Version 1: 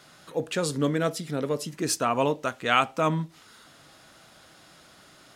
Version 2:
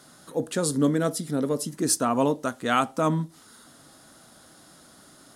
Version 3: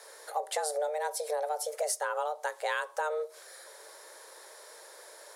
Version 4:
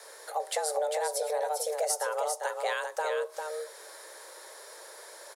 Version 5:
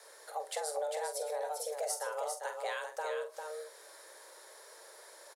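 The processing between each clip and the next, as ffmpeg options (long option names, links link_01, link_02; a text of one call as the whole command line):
ffmpeg -i in.wav -af "equalizer=frequency=250:width_type=o:width=0.67:gain=7,equalizer=frequency=2500:width_type=o:width=0.67:gain=-9,equalizer=frequency=10000:width_type=o:width=0.67:gain=9" out.wav
ffmpeg -i in.wav -af "acompressor=threshold=-30dB:ratio=10,afreqshift=300,volume=1.5dB" out.wav
ffmpeg -i in.wav -filter_complex "[0:a]acrossover=split=990|1600|3400[link_01][link_02][link_03][link_04];[link_02]acompressor=threshold=-50dB:ratio=6[link_05];[link_01][link_05][link_03][link_04]amix=inputs=4:normalize=0,aecho=1:1:399:0.531,volume=2dB" out.wav
ffmpeg -i in.wav -filter_complex "[0:a]asplit=2[link_01][link_02];[link_02]adelay=46,volume=-9dB[link_03];[link_01][link_03]amix=inputs=2:normalize=0,volume=-7dB" out.wav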